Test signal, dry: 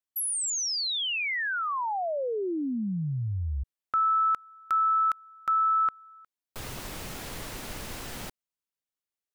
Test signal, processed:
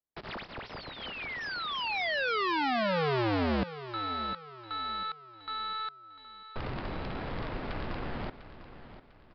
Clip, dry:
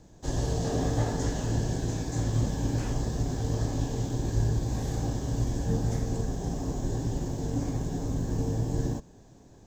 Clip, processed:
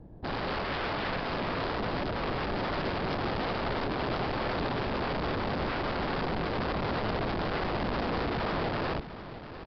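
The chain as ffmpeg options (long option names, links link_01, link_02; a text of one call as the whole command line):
ffmpeg -i in.wav -filter_complex "[0:a]aeval=exprs='(mod(29.9*val(0)+1,2)-1)/29.9':channel_layout=same,adynamicsmooth=sensitivity=6.5:basefreq=970,asplit=2[link_01][link_02];[link_02]aecho=0:1:699|1398|2097|2796:0.211|0.0782|0.0289|0.0107[link_03];[link_01][link_03]amix=inputs=2:normalize=0,aresample=11025,aresample=44100,volume=5dB" out.wav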